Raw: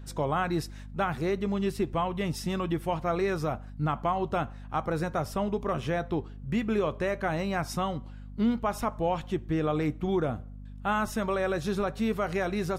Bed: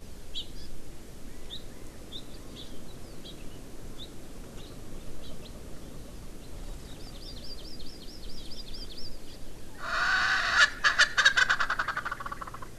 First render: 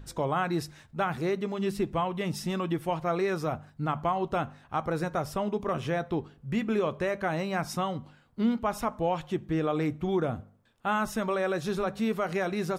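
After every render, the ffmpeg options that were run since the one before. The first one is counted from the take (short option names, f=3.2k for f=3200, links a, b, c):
-af "bandreject=f=50:t=h:w=4,bandreject=f=100:t=h:w=4,bandreject=f=150:t=h:w=4,bandreject=f=200:t=h:w=4,bandreject=f=250:t=h:w=4"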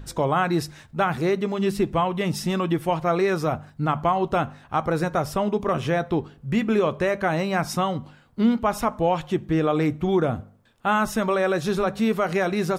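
-af "volume=6.5dB"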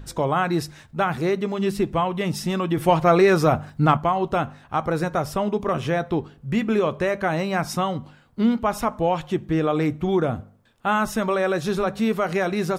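-filter_complex "[0:a]asettb=1/sr,asplit=3[a][b][c];[a]atrim=end=2.774[d];[b]atrim=start=2.77:end=3.97,asetpts=PTS-STARTPTS,afade=t=in:d=0.004:c=qsin,afade=t=out:st=1.196:d=0.004:c=qsin,acontrast=61[e];[c]atrim=start=3.966[f];[d][e]acrossfade=d=0.004:c1=hsin:c2=qsin[g];[g][f]acrossfade=d=0.004:c1=qsin:c2=hsin"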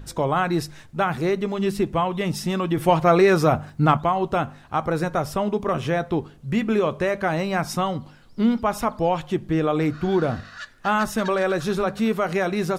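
-filter_complex "[1:a]volume=-16.5dB[a];[0:a][a]amix=inputs=2:normalize=0"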